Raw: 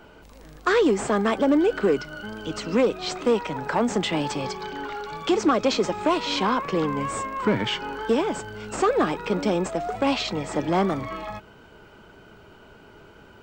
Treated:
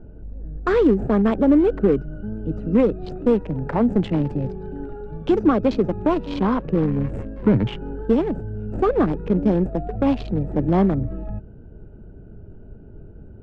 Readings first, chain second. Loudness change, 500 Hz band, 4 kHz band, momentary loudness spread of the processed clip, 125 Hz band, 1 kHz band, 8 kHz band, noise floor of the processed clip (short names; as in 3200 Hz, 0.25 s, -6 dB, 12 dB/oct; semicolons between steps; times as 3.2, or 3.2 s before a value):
+3.5 dB, +2.0 dB, -12.0 dB, 13 LU, +10.0 dB, -3.0 dB, under -20 dB, -42 dBFS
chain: Wiener smoothing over 41 samples; RIAA curve playback